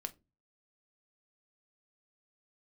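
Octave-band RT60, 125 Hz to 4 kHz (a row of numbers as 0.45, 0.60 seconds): 0.55, 0.45, 0.30, 0.20, 0.20, 0.15 seconds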